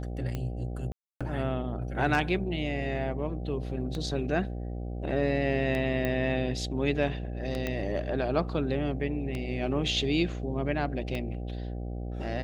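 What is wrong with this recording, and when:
buzz 60 Hz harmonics 13 -35 dBFS
tick 33 1/3 rpm -20 dBFS
0.92–1.21 gap 0.286 s
6.05 pop -17 dBFS
7.67 pop -17 dBFS

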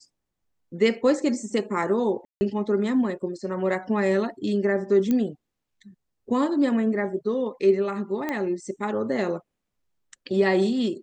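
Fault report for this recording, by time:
2.25–2.41 gap 0.16 s
5.11 pop -13 dBFS
8.29 pop -15 dBFS

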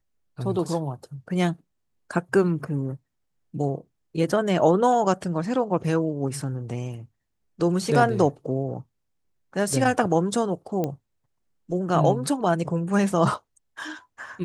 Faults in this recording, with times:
10.84 pop -14 dBFS

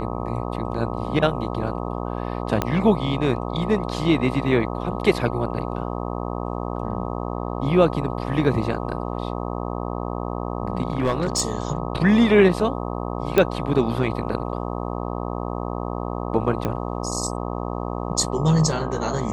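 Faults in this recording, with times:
buzz 60 Hz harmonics 21 -28 dBFS
2.62 pop -7 dBFS
10.82–11.41 clipped -15.5 dBFS
13.38 pop -5 dBFS
16.65 pop -12 dBFS

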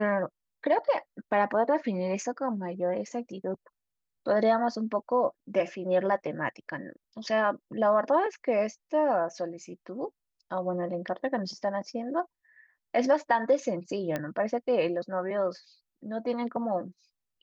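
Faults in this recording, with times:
14.16 pop -17 dBFS

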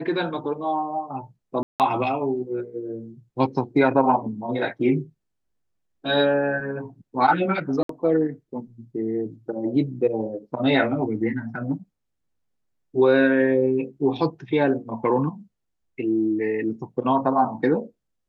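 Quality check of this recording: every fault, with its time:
1.63–1.8 gap 0.168 s
7.83–7.89 gap 63 ms

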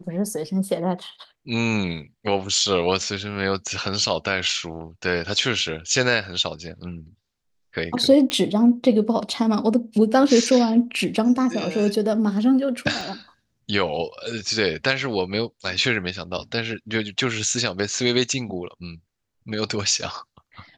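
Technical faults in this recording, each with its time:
8.3 pop -9 dBFS
13.01 gap 2.1 ms

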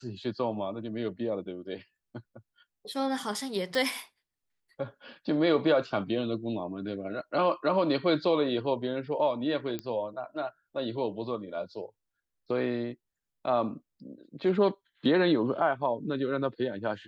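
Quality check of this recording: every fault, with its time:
3.75 pop -18 dBFS
9.79 pop -20 dBFS

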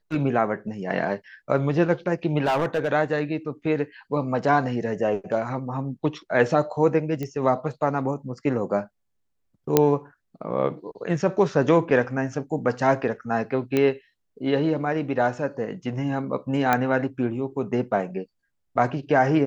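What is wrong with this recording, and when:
2.44–2.89 clipped -18 dBFS
7.23 pop -17 dBFS
9.77 pop -2 dBFS
13.77 pop -10 dBFS
16.73 pop -7 dBFS

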